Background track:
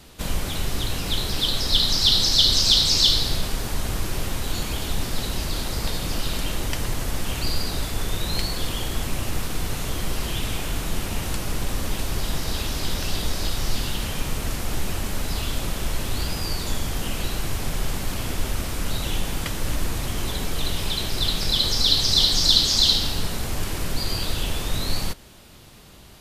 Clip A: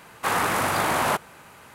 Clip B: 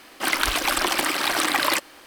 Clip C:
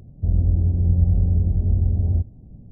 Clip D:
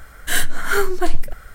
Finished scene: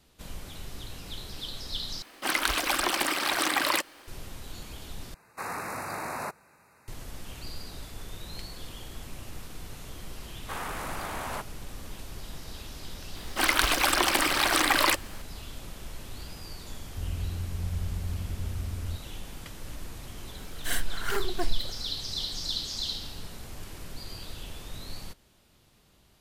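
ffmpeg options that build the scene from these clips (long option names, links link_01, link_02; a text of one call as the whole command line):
ffmpeg -i bed.wav -i cue0.wav -i cue1.wav -i cue2.wav -i cue3.wav -filter_complex "[2:a]asplit=2[link_01][link_02];[1:a]asplit=2[link_03][link_04];[0:a]volume=-15dB[link_05];[link_03]asuperstop=centerf=3200:order=8:qfactor=2.9[link_06];[4:a]aeval=exprs='abs(val(0))':channel_layout=same[link_07];[link_05]asplit=3[link_08][link_09][link_10];[link_08]atrim=end=2.024[link_11];[link_01]atrim=end=2.06,asetpts=PTS-STARTPTS,volume=-4.5dB[link_12];[link_09]atrim=start=4.076:end=5.144[link_13];[link_06]atrim=end=1.74,asetpts=PTS-STARTPTS,volume=-12dB[link_14];[link_10]atrim=start=6.876[link_15];[link_04]atrim=end=1.74,asetpts=PTS-STARTPTS,volume=-13dB,afade=type=in:duration=0.004:curve=hsin,afade=type=out:start_time=1.736:duration=0.004:curve=hsin,adelay=10250[link_16];[link_02]atrim=end=2.06,asetpts=PTS-STARTPTS,volume=-1.5dB,afade=type=in:duration=0.004:curve=hsin,afade=type=out:start_time=2.056:duration=0.004:curve=hsin,adelay=580356S[link_17];[3:a]atrim=end=2.71,asetpts=PTS-STARTPTS,volume=-15dB,afade=type=in:duration=0.004:curve=hsin,afade=type=out:start_time=2.706:duration=0.004:curve=hsin,adelay=16740[link_18];[link_07]atrim=end=1.54,asetpts=PTS-STARTPTS,volume=-10dB,afade=type=in:duration=0.004:curve=hsin,afade=type=out:start_time=1.536:duration=0.004:curve=hsin,adelay=20370[link_19];[link_11][link_12]acrossfade=duration=0.004:curve1=hsin:curve2=hsin[link_20];[link_20][link_13]acrossfade=duration=0.004:curve1=hsin:curve2=hsin[link_21];[link_21][link_14]acrossfade=duration=0.004:curve1=hsin:curve2=hsin[link_22];[link_22][link_15]acrossfade=duration=0.004:curve1=hsin:curve2=hsin[link_23];[link_23][link_16][link_17][link_18][link_19]amix=inputs=5:normalize=0" out.wav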